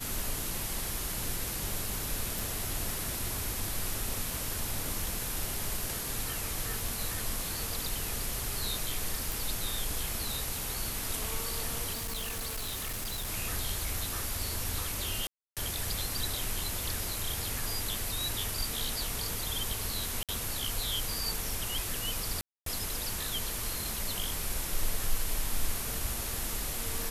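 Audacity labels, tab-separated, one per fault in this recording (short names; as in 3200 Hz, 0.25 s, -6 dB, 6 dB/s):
2.390000	2.390000	pop
9.320000	9.320000	pop
11.920000	13.290000	clipped -32.5 dBFS
15.270000	15.570000	gap 0.297 s
20.230000	20.290000	gap 57 ms
22.410000	22.660000	gap 0.253 s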